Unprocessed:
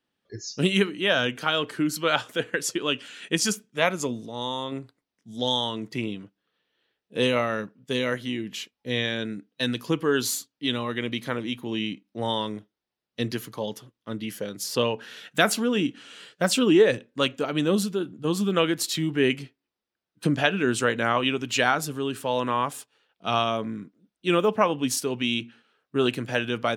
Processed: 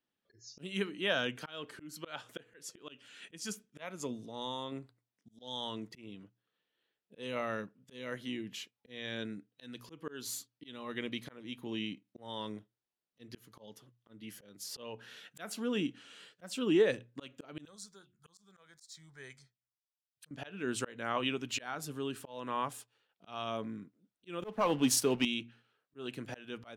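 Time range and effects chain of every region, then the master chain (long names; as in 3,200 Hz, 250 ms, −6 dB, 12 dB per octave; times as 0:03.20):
0:17.65–0:20.31: guitar amp tone stack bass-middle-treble 10-0-10 + mains-hum notches 60/120/180/240/300/360 Hz + phaser swept by the level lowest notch 210 Hz, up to 2,800 Hz, full sweep at −37.5 dBFS
0:24.42–0:25.25: high-pass filter 93 Hz + leveller curve on the samples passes 2
whole clip: mains-hum notches 60/120 Hz; volume swells 337 ms; level −9 dB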